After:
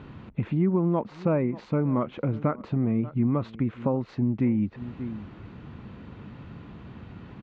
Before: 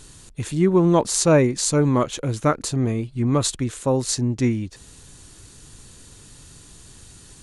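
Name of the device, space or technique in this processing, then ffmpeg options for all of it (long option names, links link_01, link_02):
bass amplifier: -filter_complex "[0:a]lowpass=7600,asplit=2[link_01][link_02];[link_02]adelay=583.1,volume=-23dB,highshelf=frequency=4000:gain=-13.1[link_03];[link_01][link_03]amix=inputs=2:normalize=0,acompressor=threshold=-34dB:ratio=3,highpass=83,equalizer=frequency=210:width_type=q:width=4:gain=8,equalizer=frequency=410:width_type=q:width=4:gain=-3,equalizer=frequency=1700:width_type=q:width=4:gain=-7,lowpass=frequency=2200:width=0.5412,lowpass=frequency=2200:width=1.3066,volume=7dB"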